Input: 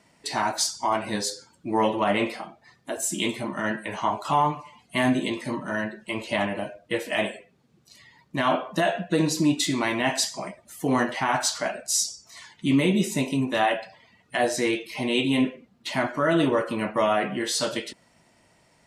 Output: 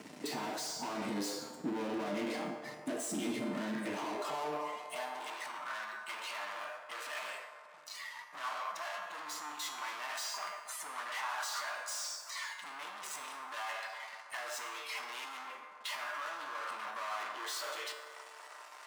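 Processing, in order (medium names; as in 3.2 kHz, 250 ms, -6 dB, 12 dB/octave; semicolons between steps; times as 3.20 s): low-pass 10 kHz; bass shelf 410 Hz +6 dB; peak limiter -19.5 dBFS, peak gain reduction 11.5 dB; waveshaping leveller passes 5; compression 3:1, threshold -35 dBFS, peak gain reduction 10 dB; high-pass sweep 73 Hz -> 400 Hz, 16.23–17.57 s; feedback comb 150 Hz, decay 0.9 s, harmonics all, mix 80%; high-pass sweep 250 Hz -> 1.1 kHz, 3.81–5.41 s; feedback echo behind a band-pass 138 ms, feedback 68%, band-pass 840 Hz, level -8.5 dB; trim +3 dB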